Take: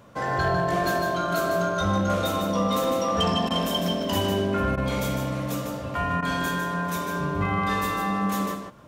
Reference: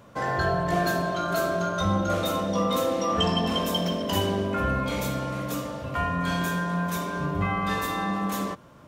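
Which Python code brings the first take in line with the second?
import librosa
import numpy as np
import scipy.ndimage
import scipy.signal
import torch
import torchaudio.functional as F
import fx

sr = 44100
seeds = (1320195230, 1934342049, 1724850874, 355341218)

y = fx.fix_declip(x, sr, threshold_db=-16.0)
y = fx.fix_declick_ar(y, sr, threshold=10.0)
y = fx.fix_interpolate(y, sr, at_s=(3.49, 4.76, 6.21), length_ms=13.0)
y = fx.fix_echo_inverse(y, sr, delay_ms=152, level_db=-6.5)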